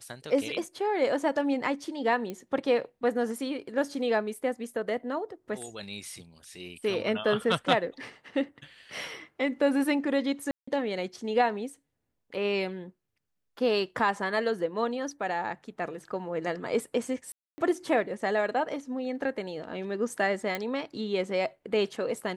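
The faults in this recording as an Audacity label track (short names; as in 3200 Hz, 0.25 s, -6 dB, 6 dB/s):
2.300000	2.300000	pop -22 dBFS
10.510000	10.680000	gap 0.165 s
17.320000	17.580000	gap 0.26 s
20.550000	20.550000	pop -16 dBFS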